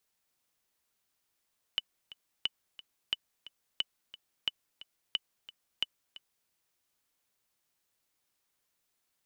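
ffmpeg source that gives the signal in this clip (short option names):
-f lavfi -i "aevalsrc='pow(10,(-16-17.5*gte(mod(t,2*60/178),60/178))/20)*sin(2*PI*2980*mod(t,60/178))*exp(-6.91*mod(t,60/178)/0.03)':d=4.71:s=44100"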